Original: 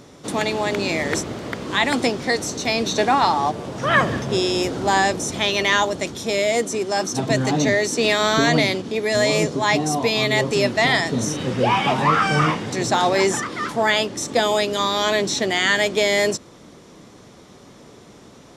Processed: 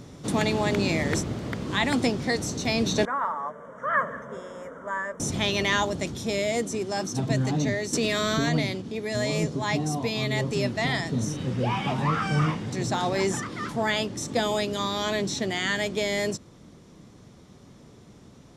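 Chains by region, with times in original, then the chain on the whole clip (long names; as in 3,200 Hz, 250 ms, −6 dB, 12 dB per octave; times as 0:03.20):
0:03.05–0:05.20: Butterworth band-reject 4,400 Hz, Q 0.87 + three-way crossover with the lows and the highs turned down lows −20 dB, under 510 Hz, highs −23 dB, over 4,700 Hz + phaser with its sweep stopped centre 520 Hz, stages 8
0:07.93–0:08.49: high-shelf EQ 11,000 Hz +5.5 dB + notch filter 850 Hz, Q 11 + envelope flattener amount 100%
whole clip: bass and treble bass +10 dB, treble +1 dB; speech leveller 2 s; level −9 dB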